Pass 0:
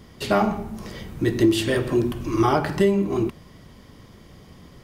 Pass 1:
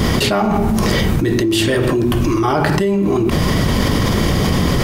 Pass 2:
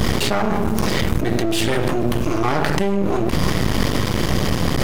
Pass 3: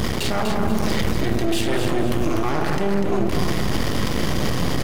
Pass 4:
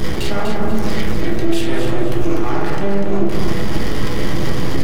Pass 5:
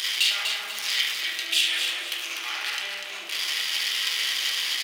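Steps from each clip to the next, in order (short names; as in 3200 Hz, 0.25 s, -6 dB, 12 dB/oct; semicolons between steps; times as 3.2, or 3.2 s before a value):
fast leveller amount 100%; gain -1.5 dB
half-wave rectifier
limiter -11.5 dBFS, peak gain reduction 10 dB; feedback echo 0.245 s, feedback 34%, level -6 dB
reverb RT60 0.45 s, pre-delay 6 ms, DRR -1 dB; gain -2.5 dB
resonant high-pass 2900 Hz, resonance Q 1.9; echo 72 ms -9.5 dB; gain +3.5 dB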